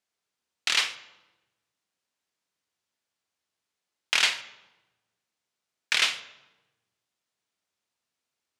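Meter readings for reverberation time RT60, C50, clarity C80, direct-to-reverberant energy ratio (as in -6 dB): 1.1 s, 14.0 dB, 15.5 dB, 11.5 dB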